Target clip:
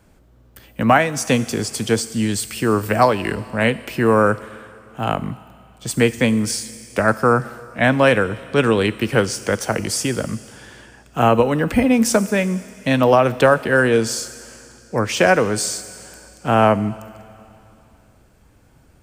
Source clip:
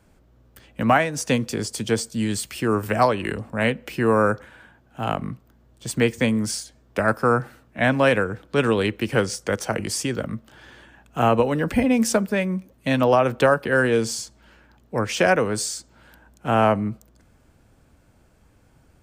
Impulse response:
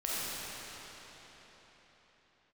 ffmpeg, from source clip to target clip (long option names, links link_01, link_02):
-filter_complex "[0:a]asplit=2[link_01][link_02];[link_02]aemphasis=mode=production:type=75kf[link_03];[1:a]atrim=start_sample=2205,asetrate=70560,aresample=44100[link_04];[link_03][link_04]afir=irnorm=-1:irlink=0,volume=-22dB[link_05];[link_01][link_05]amix=inputs=2:normalize=0,volume=3.5dB"